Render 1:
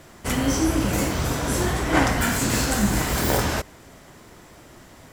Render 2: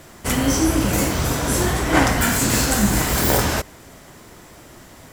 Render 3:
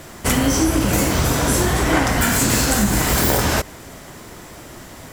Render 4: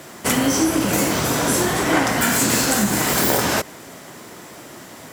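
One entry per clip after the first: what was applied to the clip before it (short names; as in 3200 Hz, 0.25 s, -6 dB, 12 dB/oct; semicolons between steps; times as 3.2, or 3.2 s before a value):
high shelf 7700 Hz +5 dB; gain +3 dB
compressor, threshold -19 dBFS, peak gain reduction 8.5 dB; gain +5.5 dB
HPF 160 Hz 12 dB/oct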